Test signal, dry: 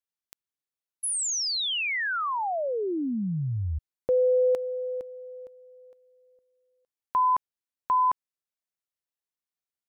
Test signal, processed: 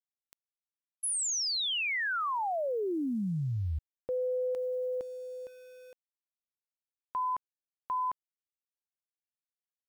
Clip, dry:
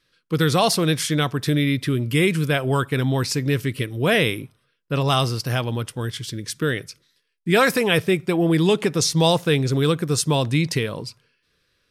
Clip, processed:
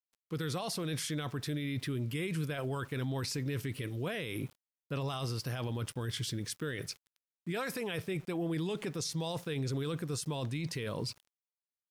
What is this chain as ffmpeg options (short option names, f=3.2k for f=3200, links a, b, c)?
-af "areverse,acompressor=threshold=-29dB:ratio=5:attack=3.8:release=377:knee=6:detection=peak,areverse,aeval=exprs='val(0)*gte(abs(val(0)),0.002)':c=same,alimiter=level_in=4dB:limit=-24dB:level=0:latency=1:release=21,volume=-4dB"